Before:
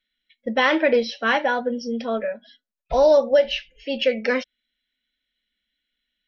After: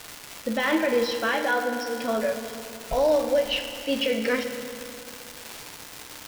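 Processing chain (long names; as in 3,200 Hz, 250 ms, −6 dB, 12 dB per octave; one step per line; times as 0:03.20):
brickwall limiter −16 dBFS, peak gain reduction 8 dB
flanger 0.59 Hz, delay 5.4 ms, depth 4 ms, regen −69%
surface crackle 590 per second −31 dBFS
0:01.34–0:02.04: low-shelf EQ 290 Hz −10 dB
feedback delay network reverb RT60 2.9 s, high-frequency decay 0.75×, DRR 5.5 dB
level +4 dB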